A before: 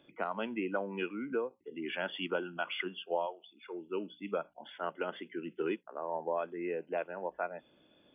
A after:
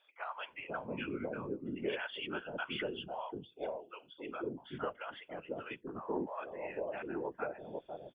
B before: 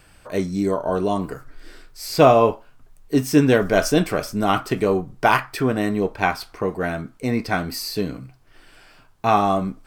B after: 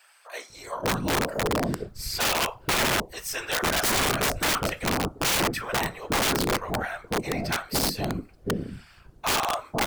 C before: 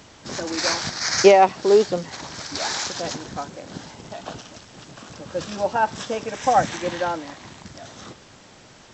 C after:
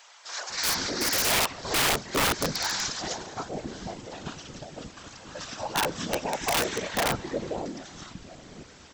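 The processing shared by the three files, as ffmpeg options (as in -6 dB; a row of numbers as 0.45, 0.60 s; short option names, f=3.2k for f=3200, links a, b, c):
-filter_complex "[0:a]afftfilt=real='hypot(re,im)*cos(2*PI*random(0))':imag='hypot(re,im)*sin(2*PI*random(1))':win_size=512:overlap=0.75,acrossover=split=710[a][b];[a]adelay=500[c];[c][b]amix=inputs=2:normalize=0,aeval=exprs='(mod(13.3*val(0)+1,2)-1)/13.3':c=same,volume=4dB"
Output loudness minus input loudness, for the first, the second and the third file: -3.5, -5.0, -6.0 LU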